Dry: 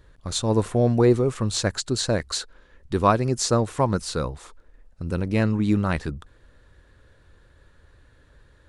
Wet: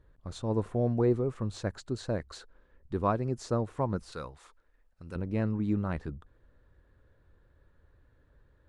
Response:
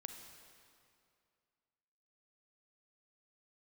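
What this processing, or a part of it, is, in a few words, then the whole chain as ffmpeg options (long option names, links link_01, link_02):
through cloth: -filter_complex "[0:a]highshelf=frequency=2400:gain=-15,asettb=1/sr,asplit=3[link_01][link_02][link_03];[link_01]atrim=end=4.124[link_04];[link_02]atrim=start=4.12:end=5.16,asetpts=PTS-STARTPTS,afade=type=in:duration=0.004:curve=qsin,afade=type=out:start_time=1.036:duration=0.004:curve=qsin,tiltshelf=frequency=970:gain=-8.5[link_05];[link_03]atrim=start=5.156[link_06];[link_04][link_05]acrossfade=duration=0.004:curve1=hsin:curve2=qsin[link_07];[link_07][link_06]acrossfade=duration=0.004:curve1=qsin:curve2=hsin,volume=-8dB"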